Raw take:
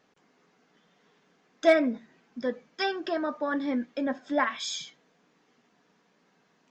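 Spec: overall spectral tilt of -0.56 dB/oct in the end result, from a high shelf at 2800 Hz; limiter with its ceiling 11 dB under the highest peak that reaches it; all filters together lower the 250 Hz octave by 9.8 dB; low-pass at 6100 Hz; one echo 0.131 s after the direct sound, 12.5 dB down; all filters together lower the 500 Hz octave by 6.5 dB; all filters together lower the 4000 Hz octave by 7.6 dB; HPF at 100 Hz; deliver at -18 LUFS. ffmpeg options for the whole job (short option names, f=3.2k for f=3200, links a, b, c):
-af "highpass=100,lowpass=6.1k,equalizer=f=250:t=o:g=-9,equalizer=f=500:t=o:g=-7.5,highshelf=f=2.8k:g=-4.5,equalizer=f=4k:t=o:g=-5,alimiter=level_in=0.5dB:limit=-24dB:level=0:latency=1,volume=-0.5dB,aecho=1:1:131:0.237,volume=20dB"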